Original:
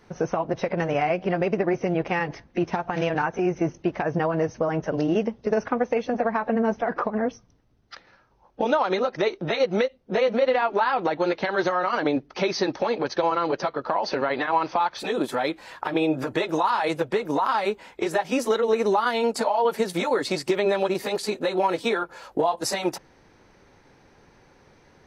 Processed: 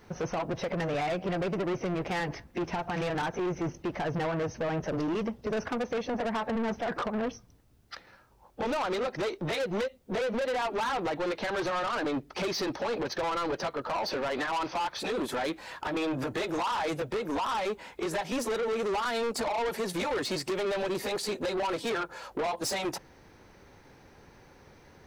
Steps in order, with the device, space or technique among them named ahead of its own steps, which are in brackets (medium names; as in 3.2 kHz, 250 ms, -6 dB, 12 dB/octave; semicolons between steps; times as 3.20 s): open-reel tape (saturation -27.5 dBFS, distortion -7 dB; peaking EQ 70 Hz +4 dB 1 oct; white noise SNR 46 dB)